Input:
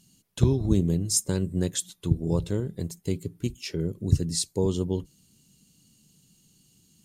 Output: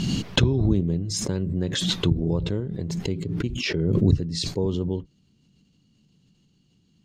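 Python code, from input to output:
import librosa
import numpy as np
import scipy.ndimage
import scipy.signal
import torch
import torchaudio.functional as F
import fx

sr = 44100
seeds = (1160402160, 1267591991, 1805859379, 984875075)

y = fx.air_absorb(x, sr, metres=210.0)
y = fx.pre_swell(y, sr, db_per_s=24.0)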